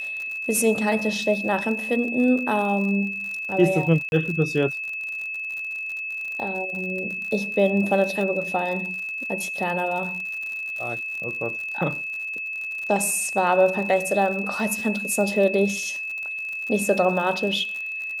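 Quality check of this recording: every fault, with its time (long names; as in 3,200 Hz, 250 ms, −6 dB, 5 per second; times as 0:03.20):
surface crackle 70 per second −31 dBFS
whistle 2,600 Hz −28 dBFS
0:04.09–0:04.12: drop-out 31 ms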